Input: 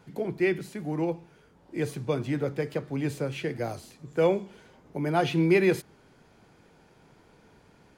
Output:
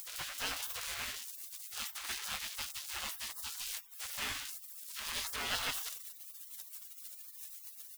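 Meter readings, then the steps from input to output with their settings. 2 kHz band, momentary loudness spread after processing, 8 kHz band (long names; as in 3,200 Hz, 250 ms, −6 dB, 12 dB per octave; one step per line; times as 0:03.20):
−5.5 dB, 10 LU, +10.0 dB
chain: converter with a step at zero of −30 dBFS
repeating echo 188 ms, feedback 22%, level −13 dB
upward compression, threshold −34 dBFS
leveller curve on the samples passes 1
double-tracking delay 19 ms −8.5 dB
gate on every frequency bin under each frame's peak −30 dB weak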